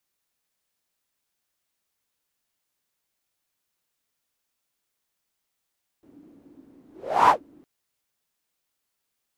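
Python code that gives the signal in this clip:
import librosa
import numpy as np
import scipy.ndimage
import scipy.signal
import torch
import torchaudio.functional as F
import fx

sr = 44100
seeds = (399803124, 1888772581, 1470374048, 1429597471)

y = fx.whoosh(sr, seeds[0], length_s=1.61, peak_s=1.26, rise_s=0.43, fall_s=0.13, ends_hz=290.0, peak_hz=1000.0, q=7.3, swell_db=37.5)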